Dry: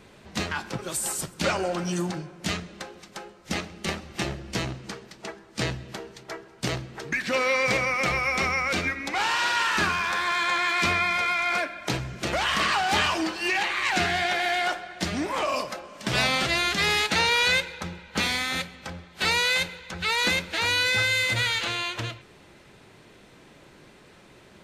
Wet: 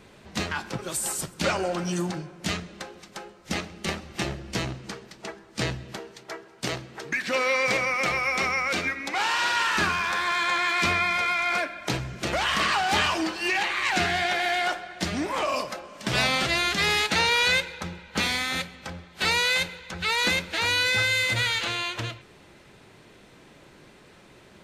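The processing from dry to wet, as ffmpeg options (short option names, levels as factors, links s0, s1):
-filter_complex "[0:a]asettb=1/sr,asplit=3[s0][s1][s2];[s0]atrim=end=5.994[s3];[s1]atrim=start=5.99:end=9.38,asetpts=PTS-STARTPTS,afade=t=in:d=0.004:c=qsin,afade=t=out:st=3.386:d=0.004:c=qsin,lowshelf=f=130:g=-10.5[s4];[s2]atrim=start=9.376[s5];[s3][s4]acrossfade=d=0.004:c1=hsin:c2=qsin[s6];[s6][s5]acrossfade=d=0.004:c1=qsin:c2=hsin"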